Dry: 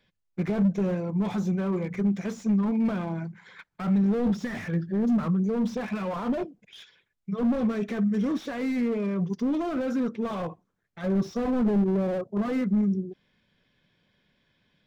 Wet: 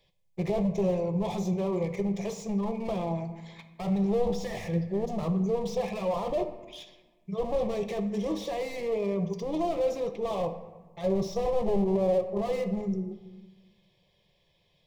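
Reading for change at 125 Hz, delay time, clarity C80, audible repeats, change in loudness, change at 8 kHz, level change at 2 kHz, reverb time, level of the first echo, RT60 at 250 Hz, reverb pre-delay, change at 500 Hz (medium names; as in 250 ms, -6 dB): -3.0 dB, no echo, 13.0 dB, no echo, -3.0 dB, no reading, -5.5 dB, 1.3 s, no echo, 1.6 s, 3 ms, +3.5 dB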